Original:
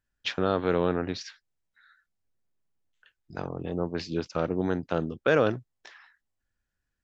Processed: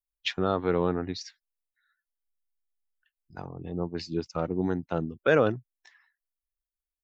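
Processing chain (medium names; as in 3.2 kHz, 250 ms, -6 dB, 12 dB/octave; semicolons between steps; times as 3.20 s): expander on every frequency bin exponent 1.5; trim +2 dB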